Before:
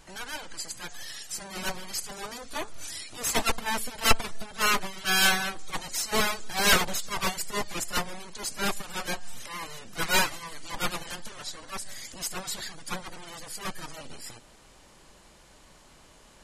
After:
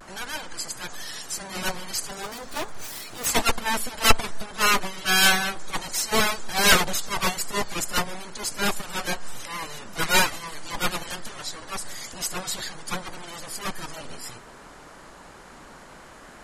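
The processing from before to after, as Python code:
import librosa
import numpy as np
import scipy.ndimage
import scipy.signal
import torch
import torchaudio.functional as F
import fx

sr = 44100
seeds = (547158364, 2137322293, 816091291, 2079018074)

y = fx.self_delay(x, sr, depth_ms=0.23, at=(2.22, 3.26))
y = fx.dmg_noise_band(y, sr, seeds[0], low_hz=120.0, high_hz=1700.0, level_db=-52.0)
y = fx.vibrato(y, sr, rate_hz=0.38, depth_cents=24.0)
y = F.gain(torch.from_numpy(y), 4.0).numpy()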